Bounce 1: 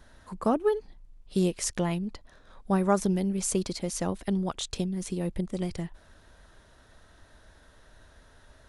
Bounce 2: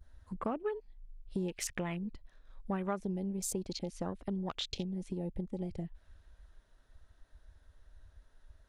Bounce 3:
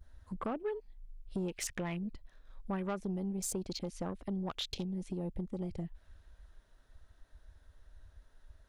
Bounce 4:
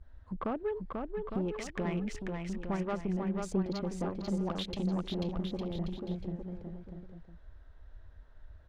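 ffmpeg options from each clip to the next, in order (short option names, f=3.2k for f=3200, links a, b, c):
-af "adynamicequalizer=threshold=0.00316:dfrequency=2500:dqfactor=0.87:tfrequency=2500:tqfactor=0.87:attack=5:release=100:ratio=0.375:range=4:mode=boostabove:tftype=bell,afwtdn=0.0141,acompressor=threshold=-40dB:ratio=2.5,volume=1.5dB"
-af "asoftclip=type=tanh:threshold=-29dB,volume=1dB"
-af "adynamicsmooth=sensitivity=2.5:basefreq=3.2k,aecho=1:1:490|857.5|1133|1340|1495:0.631|0.398|0.251|0.158|0.1,volume=2.5dB"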